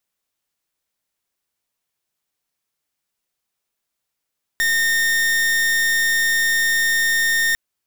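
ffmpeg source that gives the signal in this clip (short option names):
-f lavfi -i "aevalsrc='0.126*(2*lt(mod(1830*t,1),0.41)-1)':d=2.95:s=44100"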